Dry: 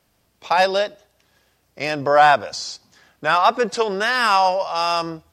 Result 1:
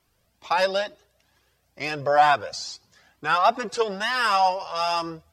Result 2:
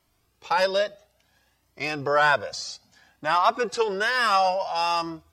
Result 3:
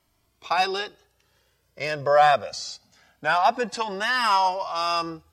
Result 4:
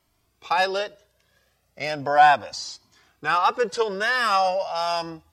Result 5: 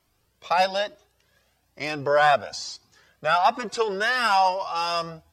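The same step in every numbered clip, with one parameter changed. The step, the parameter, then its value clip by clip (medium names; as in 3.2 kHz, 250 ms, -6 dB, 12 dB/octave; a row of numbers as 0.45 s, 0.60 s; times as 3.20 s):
Shepard-style flanger, rate: 2.2 Hz, 0.59 Hz, 0.23 Hz, 0.36 Hz, 1.1 Hz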